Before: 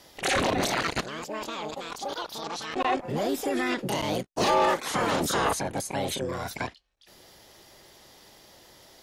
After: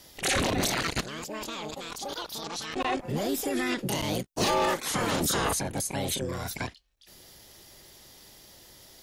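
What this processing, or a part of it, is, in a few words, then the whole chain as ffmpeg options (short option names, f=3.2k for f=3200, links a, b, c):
smiley-face EQ: -af "lowshelf=f=110:g=5.5,equalizer=f=820:t=o:w=2.2:g=-4.5,highshelf=f=7.7k:g=7.5"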